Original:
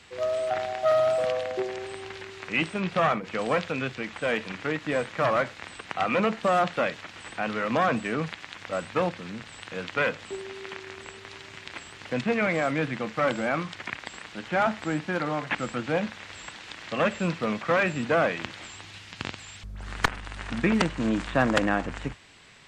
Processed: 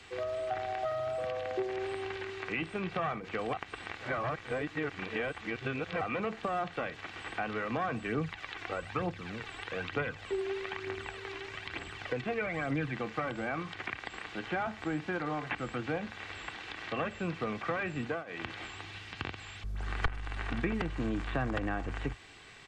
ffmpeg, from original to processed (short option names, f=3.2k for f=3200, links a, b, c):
-filter_complex "[0:a]asplit=3[a][b][c];[a]afade=t=out:st=8.06:d=0.02[d];[b]aphaser=in_gain=1:out_gain=1:delay=3:decay=0.5:speed=1.1:type=triangular,afade=t=in:st=8.06:d=0.02,afade=t=out:st=12.91:d=0.02[e];[c]afade=t=in:st=12.91:d=0.02[f];[d][e][f]amix=inputs=3:normalize=0,asplit=5[g][h][i][j][k];[g]atrim=end=3.532[l];[h]atrim=start=3.528:end=6.012,asetpts=PTS-STARTPTS,areverse[m];[i]atrim=start=6.008:end=18.24,asetpts=PTS-STARTPTS,afade=t=out:st=11.992:d=0.24:silence=0.0630957[n];[j]atrim=start=18.24:end=18.26,asetpts=PTS-STARTPTS,volume=-24dB[o];[k]atrim=start=18.26,asetpts=PTS-STARTPTS,afade=t=in:d=0.24:silence=0.0630957[p];[l][m]acrossfade=d=0.004:c1=hsin:c2=hsin[q];[n][o][p]concat=n=3:v=0:a=1[r];[q][r]acrossfade=d=0.004:c1=hsin:c2=hsin,acrossover=split=130[s][t];[t]acompressor=threshold=-33dB:ratio=4[u];[s][u]amix=inputs=2:normalize=0,aecho=1:1:2.6:0.36,acrossover=split=3700[v][w];[w]acompressor=threshold=-60dB:ratio=4:attack=1:release=60[x];[v][x]amix=inputs=2:normalize=0"